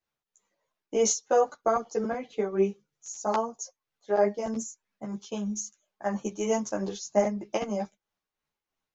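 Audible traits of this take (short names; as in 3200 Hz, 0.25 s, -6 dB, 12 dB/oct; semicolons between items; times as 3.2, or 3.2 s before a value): tremolo triangle 3.1 Hz, depth 55%; a shimmering, thickened sound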